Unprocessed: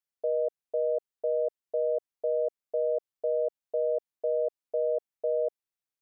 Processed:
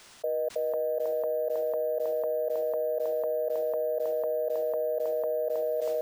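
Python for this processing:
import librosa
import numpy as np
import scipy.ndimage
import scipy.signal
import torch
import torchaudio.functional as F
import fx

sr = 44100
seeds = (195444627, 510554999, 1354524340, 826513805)

p1 = scipy.signal.sosfilt(scipy.signal.butter(4, 440.0, 'highpass', fs=sr, output='sos'), x)
p2 = fx.transient(p1, sr, attack_db=-8, sustain_db=7)
p3 = p2 + fx.echo_feedback(p2, sr, ms=320, feedback_pct=39, wet_db=-18.0, dry=0)
p4 = np.repeat(p3[::3], 3)[:len(p3)]
p5 = fx.env_flatten(p4, sr, amount_pct=100)
y = F.gain(torch.from_numpy(p5), -1.0).numpy()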